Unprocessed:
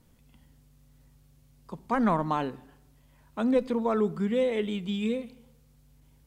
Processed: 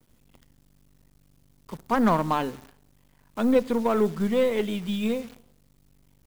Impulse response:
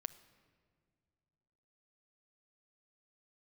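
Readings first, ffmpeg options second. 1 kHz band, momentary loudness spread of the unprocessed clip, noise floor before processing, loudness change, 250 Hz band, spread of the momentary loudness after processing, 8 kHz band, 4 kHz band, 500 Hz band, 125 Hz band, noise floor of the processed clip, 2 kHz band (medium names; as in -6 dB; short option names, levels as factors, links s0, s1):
+3.5 dB, 15 LU, -61 dBFS, +3.0 dB, +3.0 dB, 17 LU, no reading, +3.5 dB, +3.5 dB, +2.5 dB, -61 dBFS, +3.5 dB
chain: -af "acrusher=bits=9:dc=4:mix=0:aa=0.000001,aeval=exprs='0.251*(cos(1*acos(clip(val(0)/0.251,-1,1)))-cos(1*PI/2))+0.00447*(cos(7*acos(clip(val(0)/0.251,-1,1)))-cos(7*PI/2))+0.01*(cos(8*acos(clip(val(0)/0.251,-1,1)))-cos(8*PI/2))':c=same,volume=1.5"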